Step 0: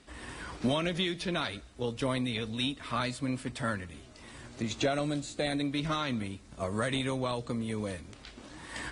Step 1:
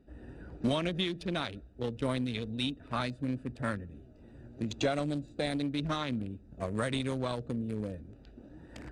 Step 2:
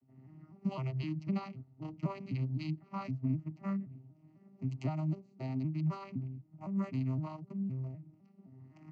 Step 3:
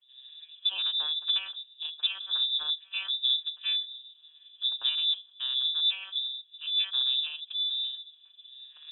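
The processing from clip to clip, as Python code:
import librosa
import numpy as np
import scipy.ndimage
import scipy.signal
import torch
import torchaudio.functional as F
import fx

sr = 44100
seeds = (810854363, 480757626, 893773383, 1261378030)

y1 = fx.wiener(x, sr, points=41)
y2 = fx.vocoder_arp(y1, sr, chord='minor triad', root=48, every_ms=256)
y2 = fx.fixed_phaser(y2, sr, hz=2400.0, stages=8)
y2 = fx.rider(y2, sr, range_db=10, speed_s=2.0)
y3 = fx.freq_invert(y2, sr, carrier_hz=3700)
y3 = y3 * 10.0 ** (5.5 / 20.0)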